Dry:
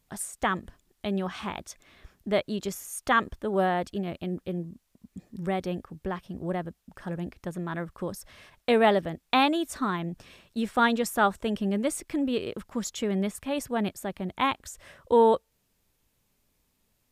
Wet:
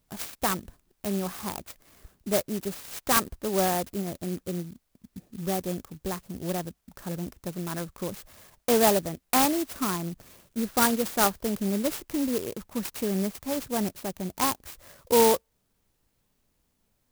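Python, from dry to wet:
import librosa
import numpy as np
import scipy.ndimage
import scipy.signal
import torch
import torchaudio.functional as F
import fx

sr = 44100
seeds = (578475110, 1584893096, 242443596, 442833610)

y = fx.clock_jitter(x, sr, seeds[0], jitter_ms=0.11)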